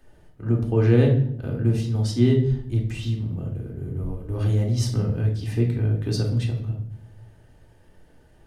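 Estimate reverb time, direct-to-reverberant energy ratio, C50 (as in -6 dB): 0.65 s, -1.0 dB, 7.5 dB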